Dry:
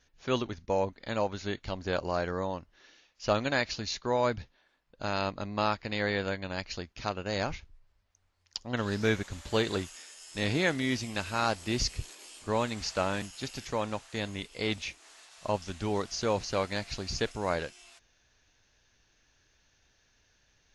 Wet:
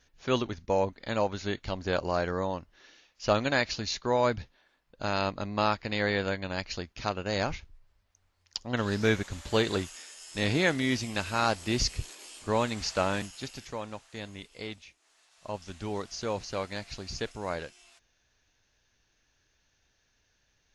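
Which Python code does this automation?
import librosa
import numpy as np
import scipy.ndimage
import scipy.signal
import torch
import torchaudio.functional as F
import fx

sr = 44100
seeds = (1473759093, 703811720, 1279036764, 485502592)

y = fx.gain(x, sr, db=fx.line((13.17, 2.0), (13.82, -6.0), (14.61, -6.0), (14.89, -15.5), (15.72, -3.5)))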